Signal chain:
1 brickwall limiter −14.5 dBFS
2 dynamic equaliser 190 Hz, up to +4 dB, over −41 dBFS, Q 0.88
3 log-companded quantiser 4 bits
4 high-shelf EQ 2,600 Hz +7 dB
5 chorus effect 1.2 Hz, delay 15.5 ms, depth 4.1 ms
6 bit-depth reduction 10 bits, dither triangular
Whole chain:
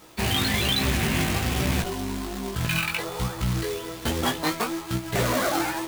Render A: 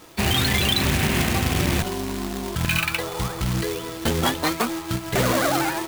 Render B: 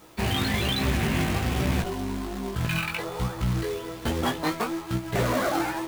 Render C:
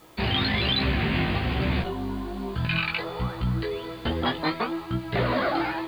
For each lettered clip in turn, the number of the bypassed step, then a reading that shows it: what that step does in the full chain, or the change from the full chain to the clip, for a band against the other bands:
5, change in integrated loudness +3.0 LU
4, 8 kHz band −5.5 dB
3, distortion level −13 dB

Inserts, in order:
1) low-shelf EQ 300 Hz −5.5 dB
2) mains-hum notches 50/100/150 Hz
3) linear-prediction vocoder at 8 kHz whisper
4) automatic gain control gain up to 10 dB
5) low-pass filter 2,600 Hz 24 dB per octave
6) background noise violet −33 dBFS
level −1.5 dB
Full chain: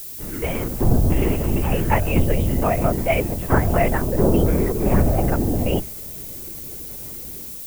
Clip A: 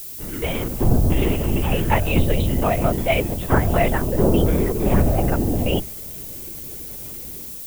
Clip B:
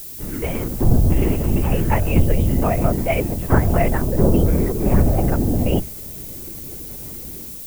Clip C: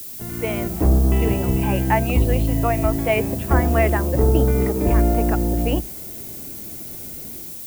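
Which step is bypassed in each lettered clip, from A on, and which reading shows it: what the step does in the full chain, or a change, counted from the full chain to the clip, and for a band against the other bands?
5, 4 kHz band +5.0 dB
1, 125 Hz band +3.5 dB
3, change in crest factor −1.5 dB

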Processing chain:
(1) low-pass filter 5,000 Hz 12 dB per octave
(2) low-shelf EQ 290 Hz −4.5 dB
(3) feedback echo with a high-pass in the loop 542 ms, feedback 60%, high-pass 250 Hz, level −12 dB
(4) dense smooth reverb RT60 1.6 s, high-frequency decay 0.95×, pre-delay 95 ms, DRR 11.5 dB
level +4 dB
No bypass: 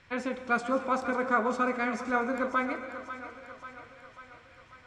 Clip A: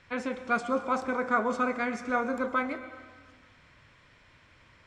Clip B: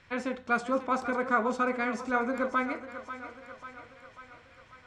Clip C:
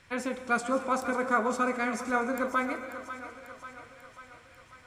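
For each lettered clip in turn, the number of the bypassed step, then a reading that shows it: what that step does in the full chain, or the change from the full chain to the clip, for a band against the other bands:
3, echo-to-direct ratio −8.0 dB to −11.5 dB
4, echo-to-direct ratio −8.0 dB to −10.5 dB
1, 8 kHz band +8.0 dB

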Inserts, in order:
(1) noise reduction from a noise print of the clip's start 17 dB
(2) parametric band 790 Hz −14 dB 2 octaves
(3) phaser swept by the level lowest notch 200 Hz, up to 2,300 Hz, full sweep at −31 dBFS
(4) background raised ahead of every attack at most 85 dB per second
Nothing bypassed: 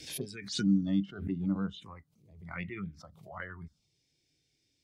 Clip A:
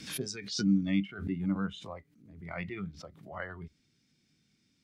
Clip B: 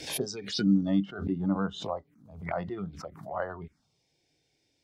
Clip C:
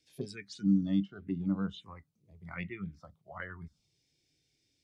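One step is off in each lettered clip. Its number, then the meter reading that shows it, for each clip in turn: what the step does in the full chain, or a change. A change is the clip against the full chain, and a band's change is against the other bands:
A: 3, 125 Hz band −2.0 dB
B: 2, 500 Hz band +8.0 dB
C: 4, 4 kHz band −7.0 dB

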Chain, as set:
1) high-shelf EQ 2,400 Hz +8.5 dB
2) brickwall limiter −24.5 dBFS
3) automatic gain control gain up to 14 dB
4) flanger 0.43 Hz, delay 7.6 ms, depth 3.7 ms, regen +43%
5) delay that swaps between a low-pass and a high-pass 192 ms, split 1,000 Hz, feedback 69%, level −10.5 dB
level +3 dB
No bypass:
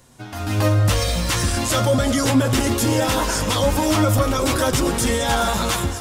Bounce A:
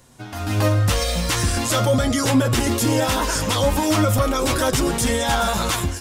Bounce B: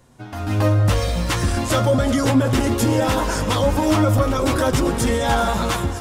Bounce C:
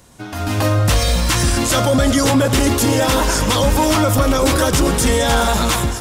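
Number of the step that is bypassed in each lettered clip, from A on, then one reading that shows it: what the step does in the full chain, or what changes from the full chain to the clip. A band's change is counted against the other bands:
5, echo-to-direct ratio −11.5 dB to none audible
1, 8 kHz band −6.0 dB
4, change in crest factor −1.5 dB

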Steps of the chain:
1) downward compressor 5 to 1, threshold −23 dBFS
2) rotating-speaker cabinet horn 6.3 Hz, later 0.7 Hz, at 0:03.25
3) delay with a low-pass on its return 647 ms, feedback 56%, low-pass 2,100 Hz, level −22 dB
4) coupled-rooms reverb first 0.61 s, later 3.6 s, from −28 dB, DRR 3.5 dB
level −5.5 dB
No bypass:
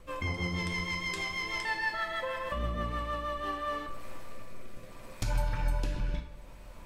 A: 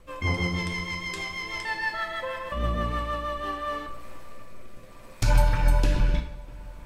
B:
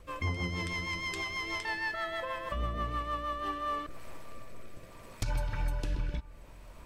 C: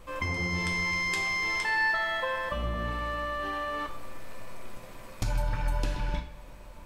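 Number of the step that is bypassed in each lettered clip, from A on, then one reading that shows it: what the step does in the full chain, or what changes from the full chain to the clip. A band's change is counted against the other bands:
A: 1, average gain reduction 3.5 dB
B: 4, 1 kHz band +1.5 dB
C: 2, change in momentary loudness spread +2 LU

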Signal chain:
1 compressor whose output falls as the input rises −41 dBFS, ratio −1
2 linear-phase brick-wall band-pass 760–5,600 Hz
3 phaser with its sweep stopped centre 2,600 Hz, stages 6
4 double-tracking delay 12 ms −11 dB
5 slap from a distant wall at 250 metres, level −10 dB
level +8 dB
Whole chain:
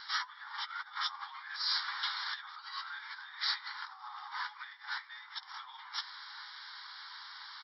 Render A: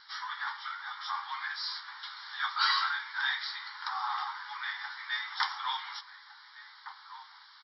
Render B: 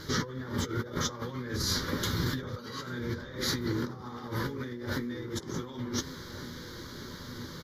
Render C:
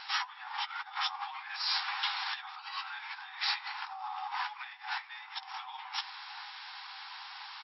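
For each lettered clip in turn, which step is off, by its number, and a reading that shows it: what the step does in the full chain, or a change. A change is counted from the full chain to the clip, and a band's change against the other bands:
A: 1, change in crest factor +2.0 dB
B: 2, change in crest factor −2.5 dB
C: 3, change in integrated loudness +2.0 LU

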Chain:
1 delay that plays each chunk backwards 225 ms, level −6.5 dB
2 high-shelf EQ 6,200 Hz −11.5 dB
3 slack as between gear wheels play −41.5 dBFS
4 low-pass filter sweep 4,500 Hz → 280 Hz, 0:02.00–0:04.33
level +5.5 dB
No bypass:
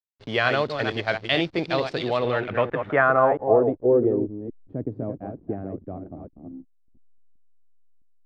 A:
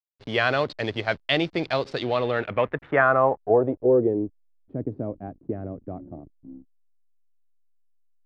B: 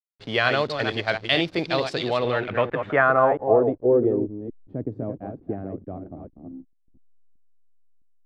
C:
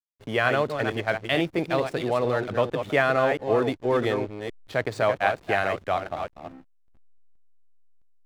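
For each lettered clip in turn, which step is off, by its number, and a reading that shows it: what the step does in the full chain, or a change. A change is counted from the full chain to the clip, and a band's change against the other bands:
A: 1, change in momentary loudness spread −1 LU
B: 2, 4 kHz band +2.5 dB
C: 4, change in momentary loudness spread −8 LU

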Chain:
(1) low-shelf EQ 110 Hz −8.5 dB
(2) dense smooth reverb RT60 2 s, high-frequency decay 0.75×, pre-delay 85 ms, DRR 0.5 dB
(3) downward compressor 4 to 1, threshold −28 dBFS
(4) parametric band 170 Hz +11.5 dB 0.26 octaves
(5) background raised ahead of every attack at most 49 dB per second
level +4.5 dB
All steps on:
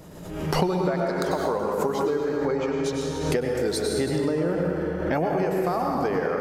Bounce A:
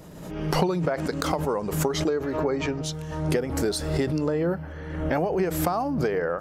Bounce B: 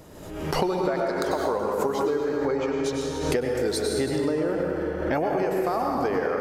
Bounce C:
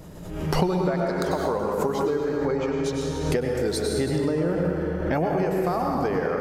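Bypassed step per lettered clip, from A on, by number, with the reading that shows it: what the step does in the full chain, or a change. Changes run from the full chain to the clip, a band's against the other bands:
2, change in momentary loudness spread +4 LU
4, 125 Hz band −4.5 dB
1, 125 Hz band +2.5 dB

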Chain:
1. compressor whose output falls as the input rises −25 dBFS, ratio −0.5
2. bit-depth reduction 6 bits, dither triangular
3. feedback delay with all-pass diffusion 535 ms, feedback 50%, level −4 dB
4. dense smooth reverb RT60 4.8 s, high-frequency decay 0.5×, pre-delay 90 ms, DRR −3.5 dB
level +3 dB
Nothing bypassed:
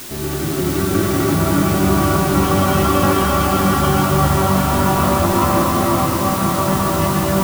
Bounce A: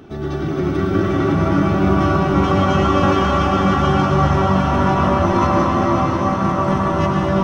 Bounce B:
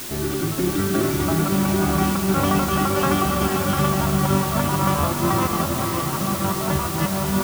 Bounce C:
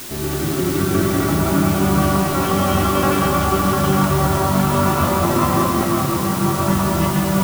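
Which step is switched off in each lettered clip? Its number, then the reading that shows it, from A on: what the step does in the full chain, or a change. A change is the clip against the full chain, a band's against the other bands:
2, distortion level −10 dB
4, echo-to-direct ratio 6.0 dB to −2.5 dB
3, echo-to-direct ratio 6.0 dB to 3.5 dB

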